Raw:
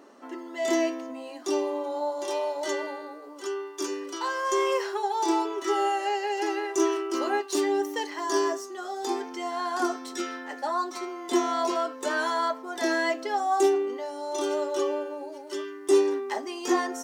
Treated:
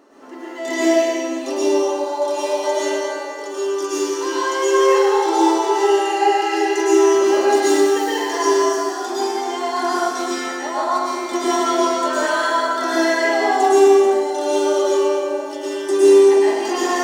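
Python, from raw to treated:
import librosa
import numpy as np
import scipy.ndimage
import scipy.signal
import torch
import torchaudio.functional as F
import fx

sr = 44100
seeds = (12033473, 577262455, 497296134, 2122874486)

y = fx.rev_plate(x, sr, seeds[0], rt60_s=2.0, hf_ratio=0.9, predelay_ms=95, drr_db=-9.0)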